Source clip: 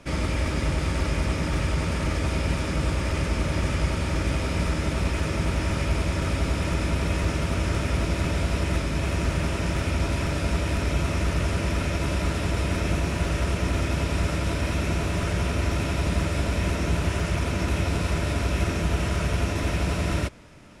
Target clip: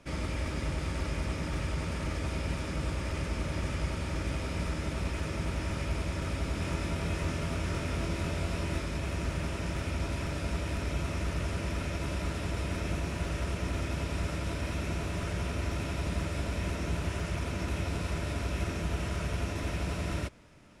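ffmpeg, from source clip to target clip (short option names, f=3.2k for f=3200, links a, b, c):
-filter_complex "[0:a]asettb=1/sr,asplit=3[a][b][c];[a]atrim=end=6.534[d];[b]atrim=start=6.53:end=8.97,asetpts=PTS-STARTPTS,afade=t=in:d=0.004:c=qsin,afade=t=out:st=2.436:d=0.004:c=qsin,asplit=2[e][f];[f]adelay=24,volume=-5.5dB[g];[e][g]amix=inputs=2:normalize=0,atrim=end_sample=107604[h];[c]atrim=start=8.966[i];[d][h]acrossfade=d=0.004:c1=hsin:c2=qsin[j];[j][i]acrossfade=d=0.004:c1=qsin:c2=hsin,volume=-8dB"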